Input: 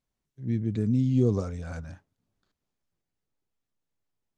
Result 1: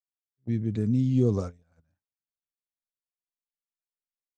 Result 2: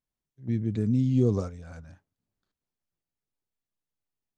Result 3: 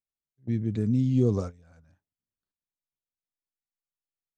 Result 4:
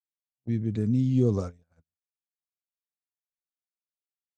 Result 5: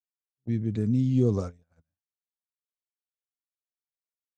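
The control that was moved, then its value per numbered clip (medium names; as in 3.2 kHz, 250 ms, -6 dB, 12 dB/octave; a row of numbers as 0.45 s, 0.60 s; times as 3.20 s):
gate, range: -33 dB, -7 dB, -20 dB, -59 dB, -46 dB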